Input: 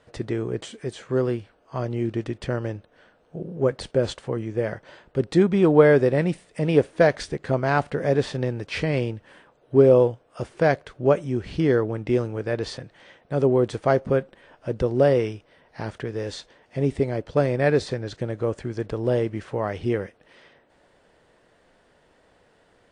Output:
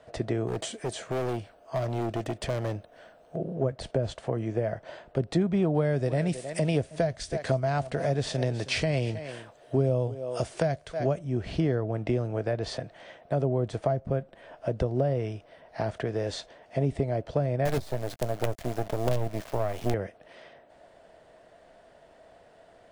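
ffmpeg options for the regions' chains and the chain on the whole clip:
ffmpeg -i in.wav -filter_complex "[0:a]asettb=1/sr,asplit=3[link_01][link_02][link_03];[link_01]atrim=end=0.474[link_04];[link_02]atrim=start=0.47:end=3.37,asetpts=PTS-STARTPTS,afade=type=in:duration=0.004:curve=qsin,afade=type=out:start_time=2.896:duration=0.004:curve=qsin,volume=27.5dB,asoftclip=hard,volume=-27.5dB,highshelf=frequency=6800:gain=10.5[link_05];[link_03]atrim=start=3.366[link_06];[link_04][link_05]acrossfade=duration=0.004:curve1=hsin:curve2=qsin[link_07];[link_07][link_06]acrossfade=duration=0.004:curve1=qsin:curve2=hsin,asettb=1/sr,asplit=3[link_08][link_09][link_10];[link_08]atrim=end=5.744[link_11];[link_09]atrim=start=5.74:end=11.19,asetpts=PTS-STARTPTS,afade=type=in:duration=0.004:curve=qsin,afade=type=out:start_time=5.446:duration=0.004:curve=qsin,equalizer=frequency=8000:width=0.35:gain=12.5,aecho=1:1:317:0.112,atrim=end_sample=240345[link_12];[link_10]atrim=start=11.186[link_13];[link_11][link_12]acrossfade=duration=0.004:curve1=hsin:curve2=qsin[link_14];[link_14][link_13]acrossfade=duration=0.004:curve1=qsin:curve2=hsin,asettb=1/sr,asplit=3[link_15][link_16][link_17];[link_15]atrim=end=17.654[link_18];[link_16]atrim=start=17.65:end=19.94,asetpts=PTS-STARTPTS,afade=type=in:duration=0.004:curve=qsin,afade=type=out:start_time=2.286:duration=0.004:curve=qsin,acrusher=bits=4:dc=4:mix=0:aa=0.000001,asplit=2[link_19][link_20];[link_20]adelay=16,volume=-14dB[link_21];[link_19][link_21]amix=inputs=2:normalize=0,atrim=end_sample=100989[link_22];[link_17]atrim=start=19.936[link_23];[link_18][link_22]acrossfade=duration=0.004:curve1=hsin:curve2=qsin[link_24];[link_24][link_23]acrossfade=duration=0.004:curve1=qsin:curve2=hsin,equalizer=frequency=660:width_type=o:width=0.32:gain=14,acrossover=split=170[link_25][link_26];[link_26]acompressor=threshold=-26dB:ratio=10[link_27];[link_25][link_27]amix=inputs=2:normalize=0" out.wav

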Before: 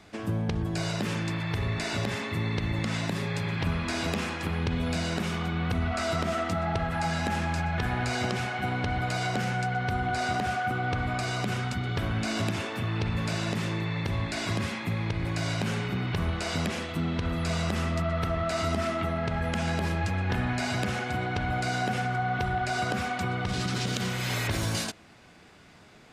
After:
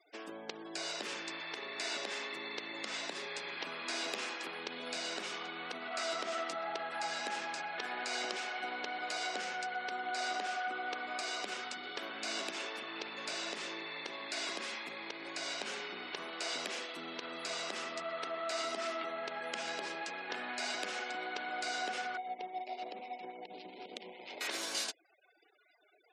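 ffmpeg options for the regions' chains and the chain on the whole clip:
ffmpeg -i in.wav -filter_complex "[0:a]asettb=1/sr,asplit=3[link_01][link_02][link_03];[link_01]atrim=end=22.174[link_04];[link_02]atrim=start=22.17:end=24.41,asetpts=PTS-STARTPTS,afade=type=in:duration=0.004:curve=qsin,afade=type=out:start_time=2.236:duration=0.004:curve=qsin,asuperstop=centerf=1400:order=12:qfactor=1.3,acrossover=split=1400[link_05][link_06];[link_05]aeval=exprs='val(0)*(1-0.5/2+0.5/2*cos(2*PI*7.3*n/s))':channel_layout=same[link_07];[link_06]aeval=exprs='val(0)*(1-0.5/2-0.5/2*cos(2*PI*7.3*n/s))':channel_layout=same[link_08];[link_07][link_08]amix=inputs=2:normalize=0,adynamicsmooth=sensitivity=5:basefreq=600[link_09];[link_03]atrim=start=24.406[link_10];[link_04][link_09]acrossfade=duration=0.004:curve1=hsin:curve2=qsin[link_11];[link_11][link_10]acrossfade=duration=0.004:curve1=qsin:curve2=hsin,highpass=frequency=330:width=0.5412,highpass=frequency=330:width=1.3066,equalizer=frequency=4900:width=0.55:gain=6.5,afftfilt=real='re*gte(hypot(re,im),0.00562)':imag='im*gte(hypot(re,im),0.00562)':win_size=1024:overlap=0.75,volume=-8.5dB" out.wav

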